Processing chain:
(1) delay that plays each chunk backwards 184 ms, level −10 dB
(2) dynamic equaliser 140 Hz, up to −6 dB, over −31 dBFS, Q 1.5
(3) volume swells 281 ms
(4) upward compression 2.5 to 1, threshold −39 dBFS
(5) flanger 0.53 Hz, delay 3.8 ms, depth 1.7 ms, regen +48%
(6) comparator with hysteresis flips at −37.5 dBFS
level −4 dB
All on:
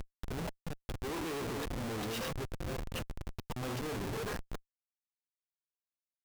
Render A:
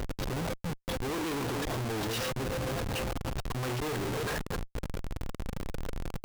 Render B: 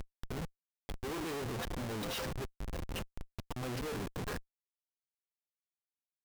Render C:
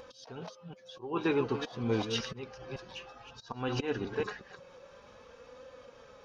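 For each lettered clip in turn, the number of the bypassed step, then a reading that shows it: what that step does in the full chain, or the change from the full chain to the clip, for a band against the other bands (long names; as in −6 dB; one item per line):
5, change in integrated loudness +5.0 LU
1, change in momentary loudness spread +2 LU
6, change in crest factor +10.5 dB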